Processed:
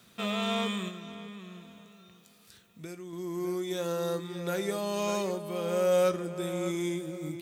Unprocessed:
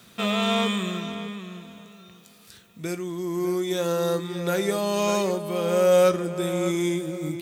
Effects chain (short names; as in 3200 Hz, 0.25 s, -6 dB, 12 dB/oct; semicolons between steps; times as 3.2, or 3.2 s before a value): 0.88–3.13 compressor, threshold -32 dBFS, peak gain reduction 6.5 dB; gain -7 dB